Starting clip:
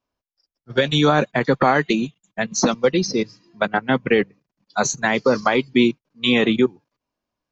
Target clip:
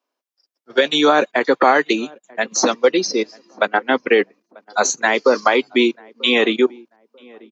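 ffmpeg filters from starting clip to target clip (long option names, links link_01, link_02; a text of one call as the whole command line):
ffmpeg -i in.wav -filter_complex "[0:a]highpass=frequency=290:width=0.5412,highpass=frequency=290:width=1.3066,asplit=2[link_01][link_02];[link_02]adelay=940,lowpass=frequency=1000:poles=1,volume=-24dB,asplit=2[link_03][link_04];[link_04]adelay=940,lowpass=frequency=1000:poles=1,volume=0.3[link_05];[link_01][link_03][link_05]amix=inputs=3:normalize=0,volume=3.5dB" out.wav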